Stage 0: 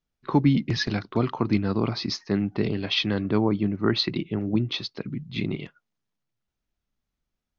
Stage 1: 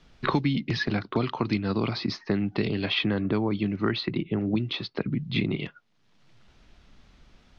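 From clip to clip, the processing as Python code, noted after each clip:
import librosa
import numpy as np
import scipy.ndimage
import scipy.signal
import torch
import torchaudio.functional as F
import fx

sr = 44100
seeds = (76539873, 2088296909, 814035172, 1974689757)

y = scipy.signal.sosfilt(scipy.signal.cheby1(2, 1.0, 4000.0, 'lowpass', fs=sr, output='sos'), x)
y = fx.band_squash(y, sr, depth_pct=100)
y = y * 10.0 ** (-1.5 / 20.0)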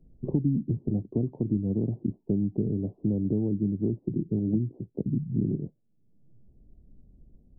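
y = scipy.ndimage.gaussian_filter1d(x, 20.0, mode='constant')
y = y * 10.0 ** (2.0 / 20.0)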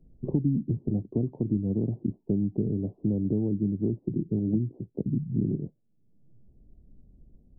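y = x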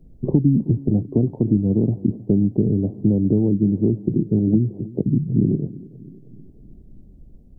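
y = fx.echo_feedback(x, sr, ms=316, feedback_pct=58, wet_db=-19.5)
y = y * 10.0 ** (9.0 / 20.0)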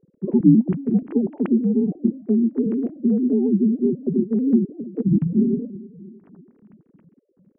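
y = fx.sine_speech(x, sr)
y = fx.air_absorb(y, sr, metres=420.0)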